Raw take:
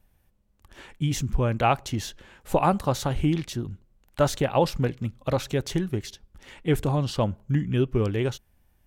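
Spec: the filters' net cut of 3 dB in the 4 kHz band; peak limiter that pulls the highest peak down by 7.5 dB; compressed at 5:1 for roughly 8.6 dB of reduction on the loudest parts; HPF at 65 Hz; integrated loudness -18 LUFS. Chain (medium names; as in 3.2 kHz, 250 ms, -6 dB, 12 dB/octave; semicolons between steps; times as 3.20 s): high-pass 65 Hz; peaking EQ 4 kHz -4 dB; compression 5:1, threshold -26 dBFS; trim +16 dB; peak limiter -7 dBFS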